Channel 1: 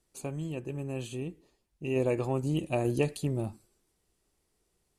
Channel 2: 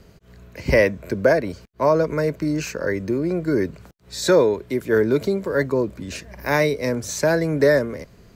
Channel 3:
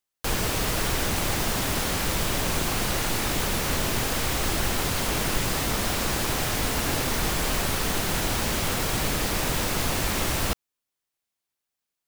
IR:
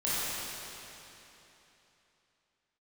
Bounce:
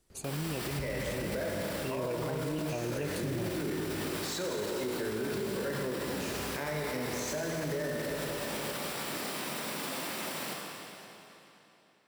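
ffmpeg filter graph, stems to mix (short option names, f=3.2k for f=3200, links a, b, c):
-filter_complex "[0:a]volume=2.5dB[a];[1:a]acompressor=threshold=-17dB:ratio=6,adelay=100,volume=-11.5dB,asplit=2[b][c];[c]volume=-4.5dB[d];[2:a]highpass=f=180:w=0.5412,highpass=f=180:w=1.3066,bandreject=f=6.5k:w=7.1,alimiter=level_in=1.5dB:limit=-24dB:level=0:latency=1,volume=-1.5dB,volume=-9dB,asplit=2[e][f];[f]volume=-5dB[g];[3:a]atrim=start_sample=2205[h];[d][g]amix=inputs=2:normalize=0[i];[i][h]afir=irnorm=-1:irlink=0[j];[a][b][e][j]amix=inputs=4:normalize=0,alimiter=level_in=2dB:limit=-24dB:level=0:latency=1:release=48,volume=-2dB"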